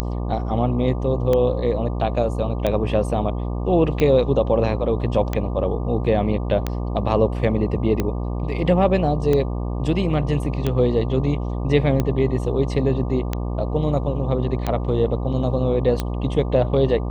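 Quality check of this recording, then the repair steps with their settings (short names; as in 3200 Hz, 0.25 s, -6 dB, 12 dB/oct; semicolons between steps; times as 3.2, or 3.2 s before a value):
buzz 60 Hz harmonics 20 -25 dBFS
tick 45 rpm -9 dBFS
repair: de-click; de-hum 60 Hz, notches 20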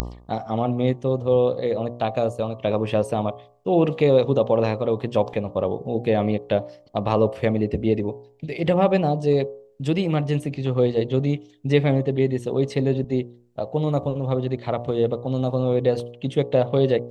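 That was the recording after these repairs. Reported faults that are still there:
none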